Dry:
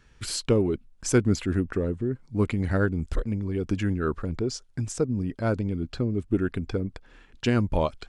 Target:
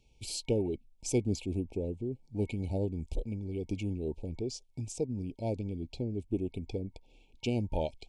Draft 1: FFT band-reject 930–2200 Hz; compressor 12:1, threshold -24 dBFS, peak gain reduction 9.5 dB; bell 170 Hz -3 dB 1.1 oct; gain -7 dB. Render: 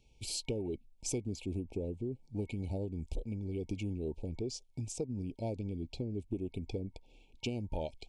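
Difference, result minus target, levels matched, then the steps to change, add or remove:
compressor: peak gain reduction +9.5 dB
remove: compressor 12:1, threshold -24 dBFS, peak gain reduction 9.5 dB

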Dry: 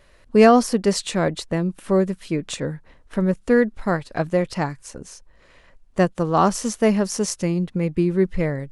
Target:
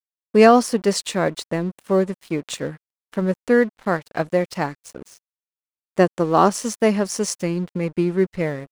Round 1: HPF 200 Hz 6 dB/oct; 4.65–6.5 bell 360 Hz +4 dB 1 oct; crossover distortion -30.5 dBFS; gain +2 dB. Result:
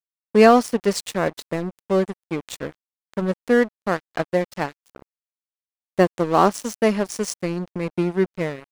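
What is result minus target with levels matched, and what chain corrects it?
crossover distortion: distortion +10 dB
HPF 200 Hz 6 dB/oct; 4.65–6.5 bell 360 Hz +4 dB 1 oct; crossover distortion -42 dBFS; gain +2 dB

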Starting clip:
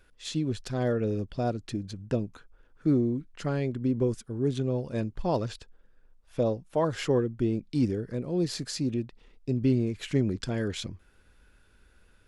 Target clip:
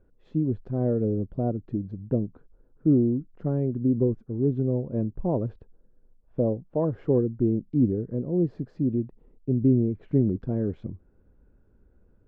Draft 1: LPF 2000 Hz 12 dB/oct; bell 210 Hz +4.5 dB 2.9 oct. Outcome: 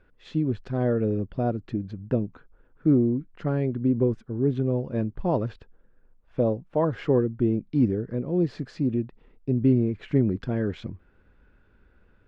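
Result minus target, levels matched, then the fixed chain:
2000 Hz band +15.5 dB
LPF 610 Hz 12 dB/oct; bell 210 Hz +4.5 dB 2.9 oct

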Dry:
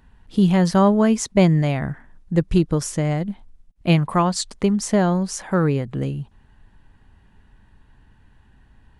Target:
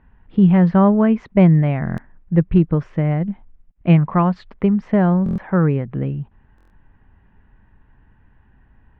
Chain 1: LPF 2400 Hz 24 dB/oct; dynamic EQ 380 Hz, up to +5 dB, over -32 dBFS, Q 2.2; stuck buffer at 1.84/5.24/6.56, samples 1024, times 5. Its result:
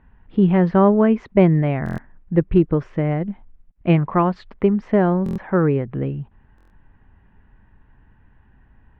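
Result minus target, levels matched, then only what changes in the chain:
500 Hz band +4.5 dB
change: dynamic EQ 170 Hz, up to +5 dB, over -32 dBFS, Q 2.2

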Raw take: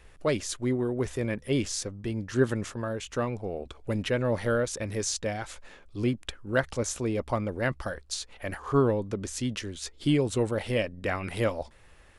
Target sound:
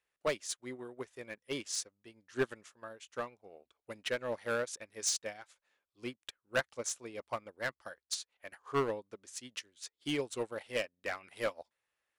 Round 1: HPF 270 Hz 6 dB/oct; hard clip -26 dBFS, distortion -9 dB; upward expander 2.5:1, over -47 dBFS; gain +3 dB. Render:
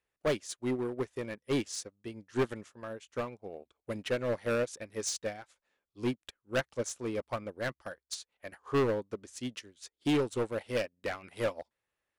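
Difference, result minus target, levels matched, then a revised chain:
250 Hz band +5.5 dB
HPF 900 Hz 6 dB/oct; hard clip -26 dBFS, distortion -13 dB; upward expander 2.5:1, over -47 dBFS; gain +3 dB

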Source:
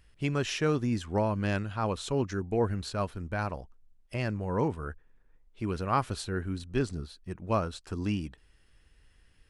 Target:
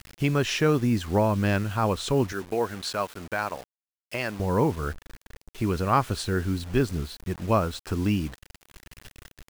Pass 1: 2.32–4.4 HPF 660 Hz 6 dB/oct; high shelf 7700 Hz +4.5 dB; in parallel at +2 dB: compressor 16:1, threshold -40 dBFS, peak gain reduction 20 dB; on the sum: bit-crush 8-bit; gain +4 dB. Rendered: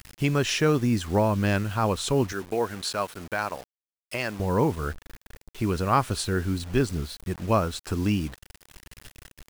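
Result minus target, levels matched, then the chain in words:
8000 Hz band +3.0 dB
2.32–4.4 HPF 660 Hz 6 dB/oct; high shelf 7700 Hz -5 dB; in parallel at +2 dB: compressor 16:1, threshold -40 dBFS, peak gain reduction 19.5 dB; on the sum: bit-crush 8-bit; gain +4 dB

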